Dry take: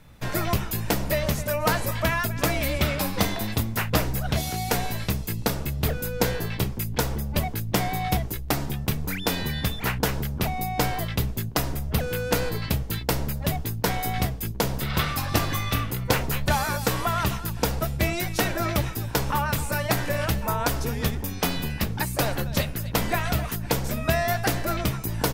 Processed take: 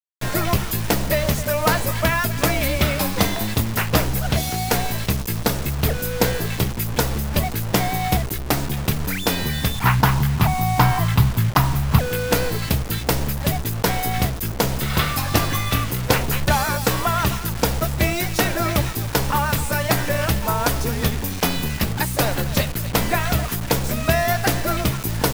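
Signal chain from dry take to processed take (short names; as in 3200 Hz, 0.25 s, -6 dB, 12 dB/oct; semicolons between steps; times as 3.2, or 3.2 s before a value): 9.75–11.99 graphic EQ 125/500/1000/8000 Hz +9/-10/+12/-9 dB; bit-crush 6-bit; gain +4.5 dB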